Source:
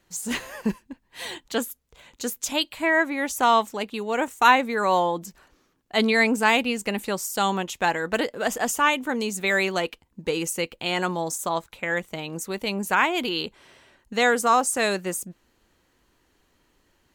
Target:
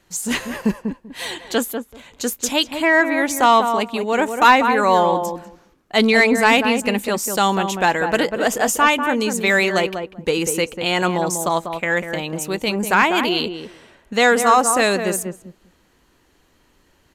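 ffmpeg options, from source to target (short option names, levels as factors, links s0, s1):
-filter_complex "[0:a]asplit=2[s0][s1];[s1]adelay=194,lowpass=f=1100:p=1,volume=0.501,asplit=2[s2][s3];[s3]adelay=194,lowpass=f=1100:p=1,volume=0.15,asplit=2[s4][s5];[s5]adelay=194,lowpass=f=1100:p=1,volume=0.15[s6];[s0][s2][s4][s6]amix=inputs=4:normalize=0,aresample=32000,aresample=44100,acontrast=58"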